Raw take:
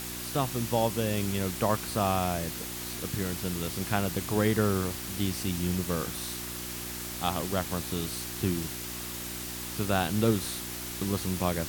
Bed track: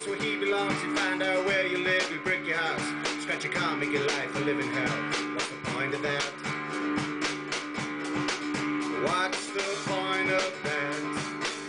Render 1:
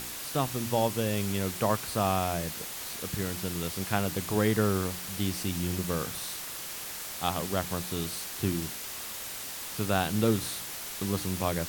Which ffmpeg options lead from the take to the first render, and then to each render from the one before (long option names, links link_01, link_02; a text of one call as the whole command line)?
ffmpeg -i in.wav -af "bandreject=frequency=60:width_type=h:width=4,bandreject=frequency=120:width_type=h:width=4,bandreject=frequency=180:width_type=h:width=4,bandreject=frequency=240:width_type=h:width=4,bandreject=frequency=300:width_type=h:width=4,bandreject=frequency=360:width_type=h:width=4" out.wav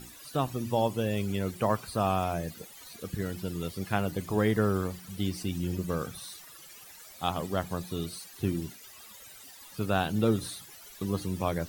ffmpeg -i in.wav -af "afftdn=noise_reduction=16:noise_floor=-39" out.wav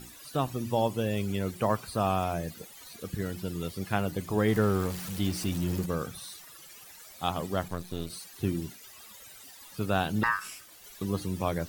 ffmpeg -i in.wav -filter_complex "[0:a]asettb=1/sr,asplit=3[link_01][link_02][link_03];[link_01]atrim=end=4.484[link_04];[link_02]atrim=start=4.48:end=5.86,asetpts=PTS-STARTPTS,afade=type=in:duration=0.004:curve=qsin,afade=type=out:start_time=1.376:duration=0.004:curve=qsin,aeval=exprs='val(0)+0.5*0.0168*sgn(val(0))':channel_layout=same[link_05];[link_03]atrim=start=5.856[link_06];[link_04][link_05]acrossfade=duration=0.004:curve1=hsin:curve2=qsin[link_07];[link_07][link_06]acrossfade=duration=0.004:curve1=qsin:curve2=hsin,asettb=1/sr,asplit=3[link_08][link_09][link_10];[link_08]atrim=end=7.684[link_11];[link_09]atrim=start=7.68:end=8.1,asetpts=PTS-STARTPTS,afade=type=in:duration=0.004:curve=qsin,afade=type=out:start_time=0.416:duration=0.004:curve=qsin,aeval=exprs='if(lt(val(0),0),0.251*val(0),val(0))':channel_layout=same[link_12];[link_10]atrim=start=8.096[link_13];[link_11][link_12]acrossfade=duration=0.004:curve1=hsin:curve2=qsin[link_14];[link_14][link_13]acrossfade=duration=0.004:curve1=qsin:curve2=hsin,asettb=1/sr,asplit=3[link_15][link_16][link_17];[link_15]atrim=end=10.234[link_18];[link_16]atrim=start=10.23:end=10.84,asetpts=PTS-STARTPTS,afade=type=in:duration=0.004:curve=qsin,afade=type=out:start_time=0.606:duration=0.004:curve=qsin,aeval=exprs='val(0)*sin(2*PI*1400*n/s)':channel_layout=same[link_19];[link_17]atrim=start=10.836[link_20];[link_18][link_19]acrossfade=duration=0.004:curve1=hsin:curve2=qsin[link_21];[link_21][link_20]acrossfade=duration=0.004:curve1=qsin:curve2=hsin" out.wav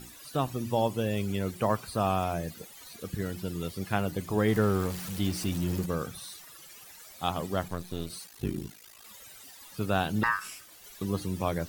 ffmpeg -i in.wav -filter_complex "[0:a]asettb=1/sr,asplit=3[link_01][link_02][link_03];[link_01]atrim=end=8.264[link_04];[link_02]atrim=start=8.26:end=9.05,asetpts=PTS-STARTPTS,afade=type=in:duration=0.004:curve=qsin,afade=type=out:start_time=0.786:duration=0.004:curve=qsin,aeval=exprs='val(0)*sin(2*PI*27*n/s)':channel_layout=same[link_05];[link_03]atrim=start=9.046[link_06];[link_04][link_05]acrossfade=duration=0.004:curve1=hsin:curve2=qsin[link_07];[link_07][link_06]acrossfade=duration=0.004:curve1=qsin:curve2=hsin" out.wav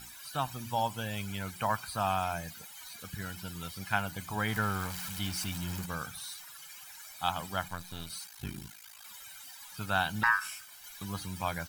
ffmpeg -i in.wav -af "lowshelf=frequency=760:width_type=q:width=1.5:gain=-8.5,aecho=1:1:1.3:0.47" out.wav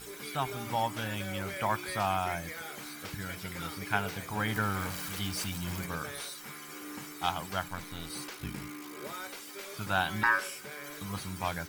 ffmpeg -i in.wav -i bed.wav -filter_complex "[1:a]volume=-14.5dB[link_01];[0:a][link_01]amix=inputs=2:normalize=0" out.wav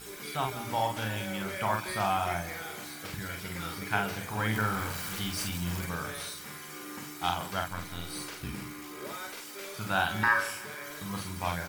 ffmpeg -i in.wav -filter_complex "[0:a]asplit=2[link_01][link_02];[link_02]adelay=46,volume=-4dB[link_03];[link_01][link_03]amix=inputs=2:normalize=0,aecho=1:1:168|336|504|672|840:0.126|0.0718|0.0409|0.0233|0.0133" out.wav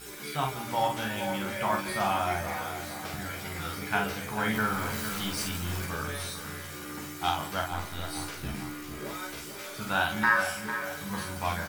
ffmpeg -i in.wav -filter_complex "[0:a]asplit=2[link_01][link_02];[link_02]adelay=14,volume=-4.5dB[link_03];[link_01][link_03]amix=inputs=2:normalize=0,asplit=2[link_04][link_05];[link_05]adelay=449,lowpass=frequency=2000:poles=1,volume=-8.5dB,asplit=2[link_06][link_07];[link_07]adelay=449,lowpass=frequency=2000:poles=1,volume=0.51,asplit=2[link_08][link_09];[link_09]adelay=449,lowpass=frequency=2000:poles=1,volume=0.51,asplit=2[link_10][link_11];[link_11]adelay=449,lowpass=frequency=2000:poles=1,volume=0.51,asplit=2[link_12][link_13];[link_13]adelay=449,lowpass=frequency=2000:poles=1,volume=0.51,asplit=2[link_14][link_15];[link_15]adelay=449,lowpass=frequency=2000:poles=1,volume=0.51[link_16];[link_04][link_06][link_08][link_10][link_12][link_14][link_16]amix=inputs=7:normalize=0" out.wav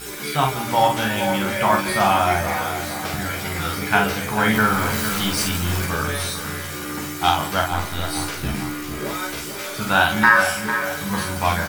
ffmpeg -i in.wav -af "volume=10.5dB,alimiter=limit=-2dB:level=0:latency=1" out.wav